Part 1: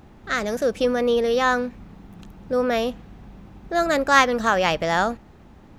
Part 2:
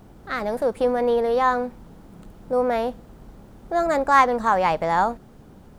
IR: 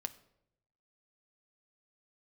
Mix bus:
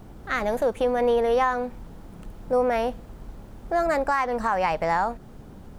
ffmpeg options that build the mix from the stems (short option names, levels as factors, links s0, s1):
-filter_complex "[0:a]volume=0.237[s0];[1:a]lowshelf=f=71:g=6,volume=-1,volume=1.19[s1];[s0][s1]amix=inputs=2:normalize=0,alimiter=limit=0.211:level=0:latency=1:release=266"